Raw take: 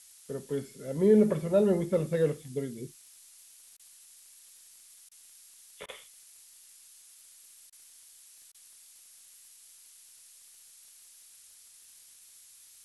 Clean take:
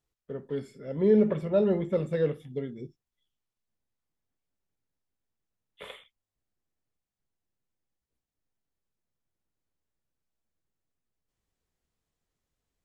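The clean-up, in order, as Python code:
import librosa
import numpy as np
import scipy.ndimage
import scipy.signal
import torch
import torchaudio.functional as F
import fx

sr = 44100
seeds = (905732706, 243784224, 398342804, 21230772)

y = fx.fix_declick_ar(x, sr, threshold=6.5)
y = fx.fix_interpolate(y, sr, at_s=(3.77, 5.09, 5.86, 7.7, 8.52), length_ms=23.0)
y = fx.noise_reduce(y, sr, print_start_s=8.54, print_end_s=9.04, reduce_db=30.0)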